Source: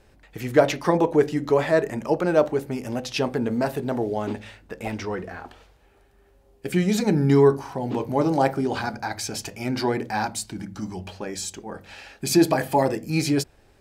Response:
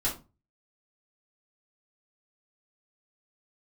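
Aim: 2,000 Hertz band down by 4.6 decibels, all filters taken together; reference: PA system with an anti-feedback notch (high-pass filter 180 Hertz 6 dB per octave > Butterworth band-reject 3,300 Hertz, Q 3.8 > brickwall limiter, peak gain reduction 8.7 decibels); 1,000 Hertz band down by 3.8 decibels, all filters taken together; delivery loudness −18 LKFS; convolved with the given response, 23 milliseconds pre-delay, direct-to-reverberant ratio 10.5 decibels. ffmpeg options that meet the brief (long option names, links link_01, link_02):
-filter_complex "[0:a]equalizer=frequency=1000:width_type=o:gain=-4,equalizer=frequency=2000:width_type=o:gain=-4.5,asplit=2[link_01][link_02];[1:a]atrim=start_sample=2205,adelay=23[link_03];[link_02][link_03]afir=irnorm=-1:irlink=0,volume=-17.5dB[link_04];[link_01][link_04]amix=inputs=2:normalize=0,highpass=frequency=180:poles=1,asuperstop=centerf=3300:order=8:qfactor=3.8,volume=9.5dB,alimiter=limit=-5dB:level=0:latency=1"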